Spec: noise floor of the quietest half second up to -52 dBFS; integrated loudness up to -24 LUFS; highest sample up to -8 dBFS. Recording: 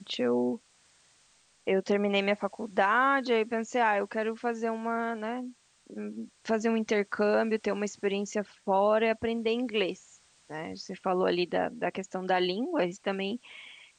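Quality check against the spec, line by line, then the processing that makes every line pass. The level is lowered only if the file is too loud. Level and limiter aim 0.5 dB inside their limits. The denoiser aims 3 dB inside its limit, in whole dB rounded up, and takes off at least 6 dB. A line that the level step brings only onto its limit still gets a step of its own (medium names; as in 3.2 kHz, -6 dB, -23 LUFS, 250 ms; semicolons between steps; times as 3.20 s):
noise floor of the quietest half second -64 dBFS: pass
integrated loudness -29.5 LUFS: pass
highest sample -12.0 dBFS: pass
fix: none needed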